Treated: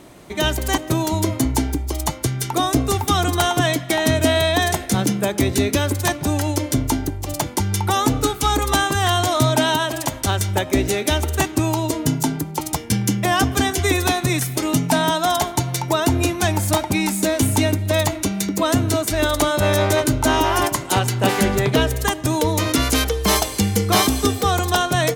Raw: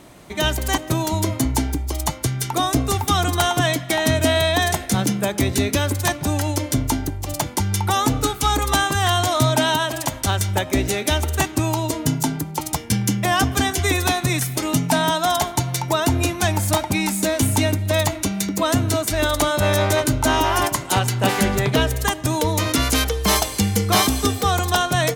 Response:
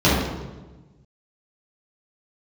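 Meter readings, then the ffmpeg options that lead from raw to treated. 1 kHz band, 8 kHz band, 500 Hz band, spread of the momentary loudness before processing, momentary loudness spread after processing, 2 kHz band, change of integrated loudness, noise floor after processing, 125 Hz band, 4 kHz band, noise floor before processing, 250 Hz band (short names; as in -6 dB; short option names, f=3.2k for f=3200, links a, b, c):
+0.5 dB, 0.0 dB, +1.5 dB, 5 LU, 5 LU, 0.0 dB, +0.5 dB, -32 dBFS, 0.0 dB, 0.0 dB, -34 dBFS, +2.0 dB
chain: -af "equalizer=f=370:t=o:w=0.96:g=3.5"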